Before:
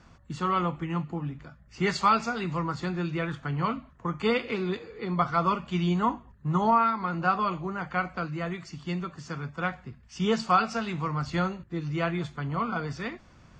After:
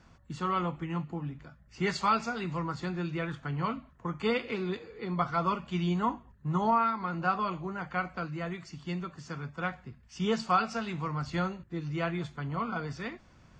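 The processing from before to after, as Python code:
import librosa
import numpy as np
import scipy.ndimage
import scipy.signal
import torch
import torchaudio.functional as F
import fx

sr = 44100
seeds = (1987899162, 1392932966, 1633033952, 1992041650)

y = fx.notch(x, sr, hz=1200.0, q=29.0)
y = F.gain(torch.from_numpy(y), -3.5).numpy()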